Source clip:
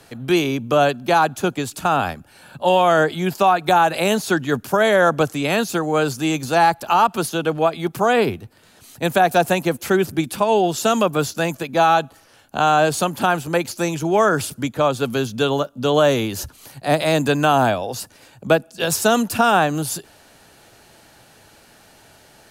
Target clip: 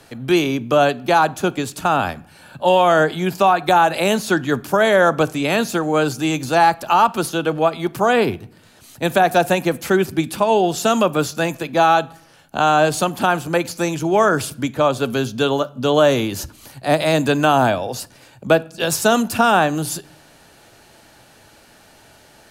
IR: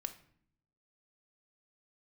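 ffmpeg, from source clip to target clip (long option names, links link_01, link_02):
-filter_complex "[0:a]asplit=2[link_01][link_02];[1:a]atrim=start_sample=2205,highshelf=frequency=12000:gain=-10.5[link_03];[link_02][link_03]afir=irnorm=-1:irlink=0,volume=-3.5dB[link_04];[link_01][link_04]amix=inputs=2:normalize=0,volume=-2.5dB"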